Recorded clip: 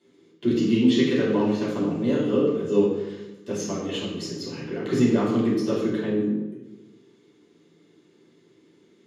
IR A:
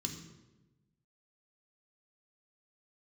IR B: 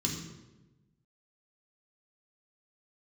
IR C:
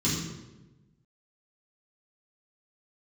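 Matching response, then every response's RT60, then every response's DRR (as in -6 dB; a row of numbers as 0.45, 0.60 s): C; 1.1, 1.1, 1.1 s; 2.5, -1.5, -9.5 dB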